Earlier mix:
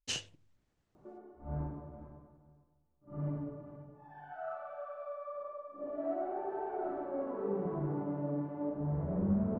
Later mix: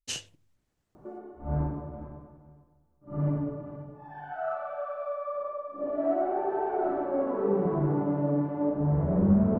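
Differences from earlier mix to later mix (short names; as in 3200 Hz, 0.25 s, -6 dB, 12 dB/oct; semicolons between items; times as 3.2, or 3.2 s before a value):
speech: remove air absorption 52 m; background +9.0 dB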